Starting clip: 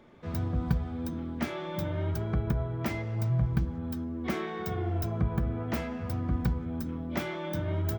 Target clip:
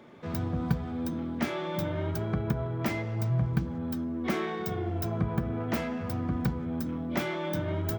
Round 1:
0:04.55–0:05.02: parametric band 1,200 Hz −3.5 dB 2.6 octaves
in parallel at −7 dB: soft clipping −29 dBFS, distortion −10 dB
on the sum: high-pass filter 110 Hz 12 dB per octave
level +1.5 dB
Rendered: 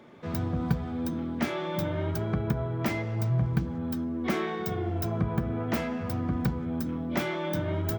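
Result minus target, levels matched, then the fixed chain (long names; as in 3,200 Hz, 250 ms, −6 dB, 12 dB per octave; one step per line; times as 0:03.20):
soft clipping: distortion −6 dB
0:04.55–0:05.02: parametric band 1,200 Hz −3.5 dB 2.6 octaves
in parallel at −7 dB: soft clipping −40 dBFS, distortion −4 dB
on the sum: high-pass filter 110 Hz 12 dB per octave
level +1.5 dB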